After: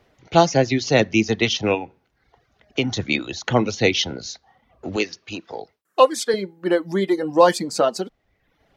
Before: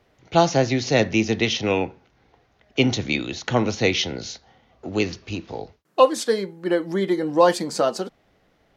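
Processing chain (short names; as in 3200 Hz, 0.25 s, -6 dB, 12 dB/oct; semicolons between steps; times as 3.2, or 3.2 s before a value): 1.74–2.97 compressor 4:1, threshold -21 dBFS, peak gain reduction 7.5 dB; 4.96–6.34 HPF 380 Hz 6 dB/oct; reverb removal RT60 0.78 s; gain +2.5 dB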